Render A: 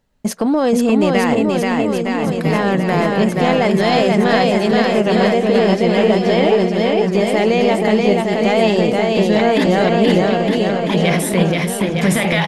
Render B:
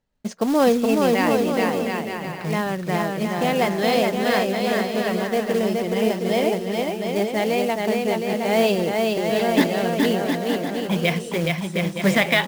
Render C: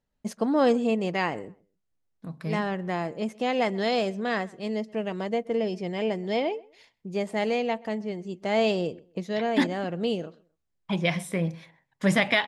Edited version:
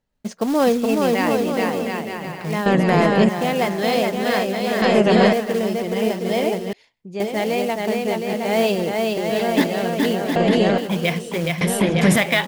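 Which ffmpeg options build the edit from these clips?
-filter_complex "[0:a]asplit=4[a][b][c][d];[1:a]asplit=6[e][f][g][h][i][j];[e]atrim=end=2.662[k];[a]atrim=start=2.658:end=3.292[l];[f]atrim=start=3.288:end=4.822[m];[b]atrim=start=4.818:end=5.332[n];[g]atrim=start=5.328:end=6.732[o];[2:a]atrim=start=6.728:end=7.202[p];[h]atrim=start=7.198:end=10.362[q];[c]atrim=start=10.358:end=10.782[r];[i]atrim=start=10.778:end=11.612[s];[d]atrim=start=11.608:end=12.162[t];[j]atrim=start=12.158[u];[k][l]acrossfade=d=0.004:c1=hsin:c2=hsin[v];[v][m]acrossfade=d=0.004:c1=hsin:c2=hsin[w];[w][n]acrossfade=d=0.004:c1=hsin:c2=hsin[x];[x][o]acrossfade=d=0.004:c1=hsin:c2=hsin[y];[y][p]acrossfade=d=0.004:c1=hsin:c2=hsin[z];[z][q]acrossfade=d=0.004:c1=hsin:c2=hsin[aa];[aa][r]acrossfade=d=0.004:c1=hsin:c2=hsin[ab];[ab][s]acrossfade=d=0.004:c1=hsin:c2=hsin[ac];[ac][t]acrossfade=d=0.004:c1=hsin:c2=hsin[ad];[ad][u]acrossfade=d=0.004:c1=hsin:c2=hsin"

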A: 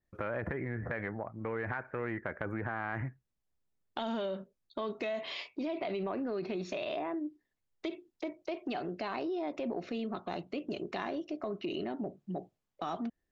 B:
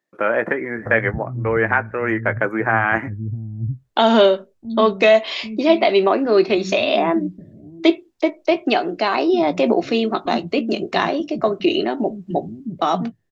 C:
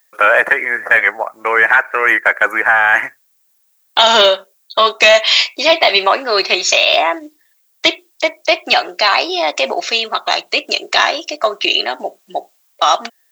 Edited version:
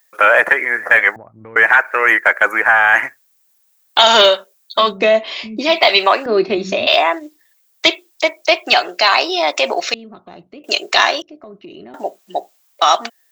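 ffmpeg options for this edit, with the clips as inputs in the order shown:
-filter_complex "[0:a]asplit=3[a][b][c];[1:a]asplit=2[d][e];[2:a]asplit=6[f][g][h][i][j][k];[f]atrim=end=1.162[l];[a]atrim=start=1.158:end=1.562[m];[g]atrim=start=1.558:end=5[n];[d]atrim=start=4.76:end=5.8[o];[h]atrim=start=5.56:end=6.262[p];[e]atrim=start=6.258:end=6.872[q];[i]atrim=start=6.868:end=9.942[r];[b]atrim=start=9.938:end=10.642[s];[j]atrim=start=10.638:end=11.222[t];[c]atrim=start=11.218:end=11.942[u];[k]atrim=start=11.938[v];[l][m]acrossfade=d=0.004:c1=hsin:c2=hsin[w];[w][n]acrossfade=d=0.004:c1=hsin:c2=hsin[x];[x][o]acrossfade=d=0.24:c1=tri:c2=tri[y];[y][p]acrossfade=d=0.24:c1=tri:c2=tri[z];[z][q]acrossfade=d=0.004:c1=hsin:c2=hsin[aa];[aa][r]acrossfade=d=0.004:c1=hsin:c2=hsin[ab];[ab][s]acrossfade=d=0.004:c1=hsin:c2=hsin[ac];[ac][t]acrossfade=d=0.004:c1=hsin:c2=hsin[ad];[ad][u]acrossfade=d=0.004:c1=hsin:c2=hsin[ae];[ae][v]acrossfade=d=0.004:c1=hsin:c2=hsin"

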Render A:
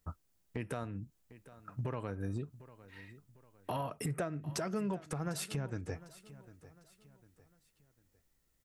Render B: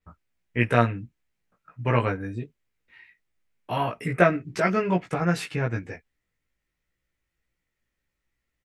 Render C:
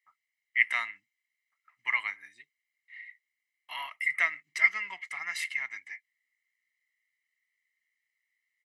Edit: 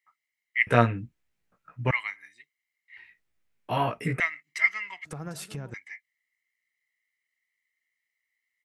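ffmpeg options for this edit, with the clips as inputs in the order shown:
-filter_complex "[1:a]asplit=2[a][b];[2:a]asplit=4[c][d][e][f];[c]atrim=end=0.672[g];[a]atrim=start=0.668:end=1.912[h];[d]atrim=start=1.908:end=2.972[i];[b]atrim=start=2.968:end=4.202[j];[e]atrim=start=4.198:end=5.052[k];[0:a]atrim=start=5.048:end=5.742[l];[f]atrim=start=5.738[m];[g][h]acrossfade=d=0.004:c1=hsin:c2=hsin[n];[n][i]acrossfade=d=0.004:c1=hsin:c2=hsin[o];[o][j]acrossfade=d=0.004:c1=hsin:c2=hsin[p];[p][k]acrossfade=d=0.004:c1=hsin:c2=hsin[q];[q][l]acrossfade=d=0.004:c1=hsin:c2=hsin[r];[r][m]acrossfade=d=0.004:c1=hsin:c2=hsin"

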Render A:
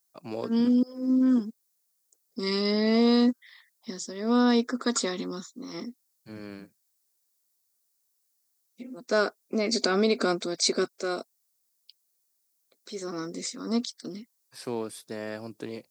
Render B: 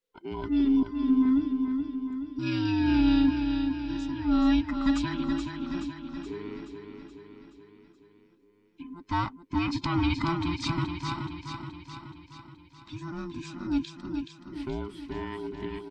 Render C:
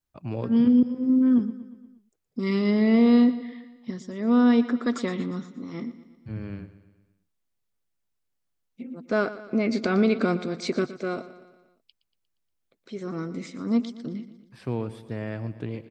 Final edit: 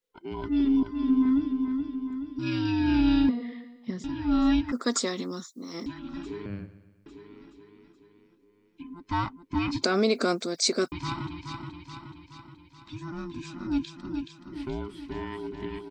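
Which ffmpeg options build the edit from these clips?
-filter_complex "[2:a]asplit=2[a][b];[0:a]asplit=2[c][d];[1:a]asplit=5[e][f][g][h][i];[e]atrim=end=3.292[j];[a]atrim=start=3.288:end=4.042[k];[f]atrim=start=4.038:end=4.722[l];[c]atrim=start=4.718:end=5.862[m];[g]atrim=start=5.858:end=6.462[n];[b]atrim=start=6.458:end=7.062[o];[h]atrim=start=7.058:end=9.832[p];[d]atrim=start=9.828:end=10.922[q];[i]atrim=start=10.918[r];[j][k]acrossfade=d=0.004:c1=hsin:c2=hsin[s];[s][l]acrossfade=d=0.004:c1=hsin:c2=hsin[t];[t][m]acrossfade=d=0.004:c1=hsin:c2=hsin[u];[u][n]acrossfade=d=0.004:c1=hsin:c2=hsin[v];[v][o]acrossfade=d=0.004:c1=hsin:c2=hsin[w];[w][p]acrossfade=d=0.004:c1=hsin:c2=hsin[x];[x][q]acrossfade=d=0.004:c1=hsin:c2=hsin[y];[y][r]acrossfade=d=0.004:c1=hsin:c2=hsin"

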